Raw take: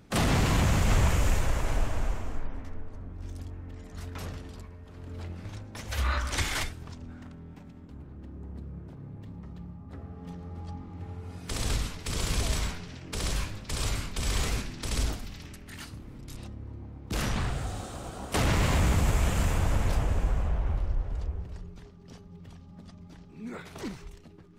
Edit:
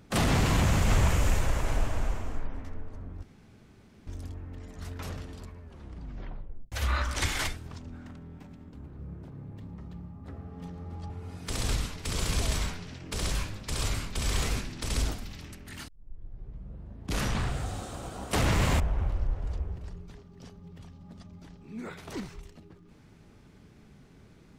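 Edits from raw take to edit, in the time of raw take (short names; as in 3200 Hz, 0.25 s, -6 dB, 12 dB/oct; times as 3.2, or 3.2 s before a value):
3.23 insert room tone 0.84 s
4.76 tape stop 1.12 s
8.15–8.64 cut
10.75–11.11 cut
15.89 tape start 1.38 s
18.81–20.48 cut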